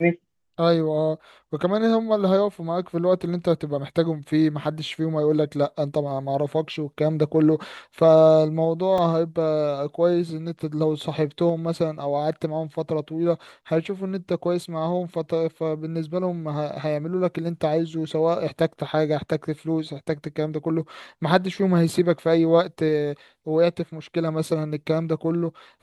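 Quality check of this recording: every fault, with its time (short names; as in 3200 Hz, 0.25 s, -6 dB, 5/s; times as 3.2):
8.98 gap 2.9 ms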